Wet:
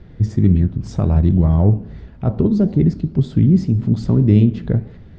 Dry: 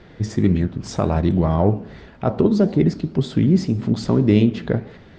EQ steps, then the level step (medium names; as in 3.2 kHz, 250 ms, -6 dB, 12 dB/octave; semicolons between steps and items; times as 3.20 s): bass shelf 160 Hz +11 dB; bass shelf 320 Hz +8.5 dB; -8.0 dB